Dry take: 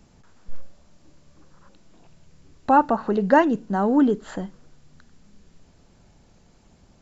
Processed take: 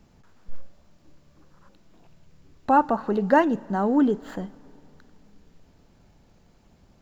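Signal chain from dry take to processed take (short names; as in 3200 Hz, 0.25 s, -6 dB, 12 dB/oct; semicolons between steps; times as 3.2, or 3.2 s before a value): median filter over 5 samples; on a send: reverb RT60 3.5 s, pre-delay 7 ms, DRR 23.5 dB; on the sum: gain -2 dB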